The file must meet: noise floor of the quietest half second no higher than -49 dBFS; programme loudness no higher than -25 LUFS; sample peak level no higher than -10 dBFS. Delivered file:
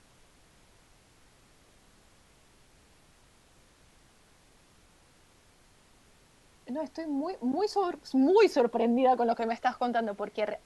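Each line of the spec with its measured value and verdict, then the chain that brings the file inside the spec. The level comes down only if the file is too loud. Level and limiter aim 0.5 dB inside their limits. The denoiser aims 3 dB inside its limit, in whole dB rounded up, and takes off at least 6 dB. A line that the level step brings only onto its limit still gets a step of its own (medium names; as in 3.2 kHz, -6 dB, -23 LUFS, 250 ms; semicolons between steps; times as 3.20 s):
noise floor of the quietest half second -61 dBFS: pass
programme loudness -28.0 LUFS: pass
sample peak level -12.5 dBFS: pass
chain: none needed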